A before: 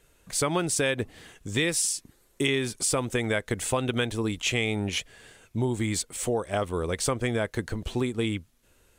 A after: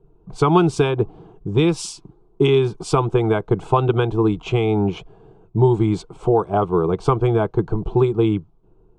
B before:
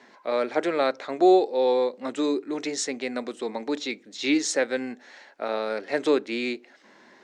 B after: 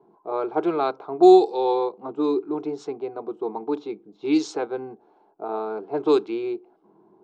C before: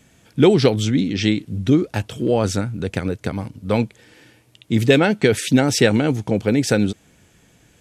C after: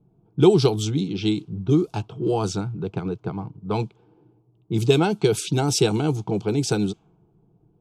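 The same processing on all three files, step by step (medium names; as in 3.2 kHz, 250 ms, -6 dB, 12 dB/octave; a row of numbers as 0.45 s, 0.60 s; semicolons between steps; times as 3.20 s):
static phaser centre 370 Hz, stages 8; level-controlled noise filter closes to 500 Hz, open at -17 dBFS; peak normalisation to -3 dBFS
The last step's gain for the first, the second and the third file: +14.0 dB, +5.5 dB, -0.5 dB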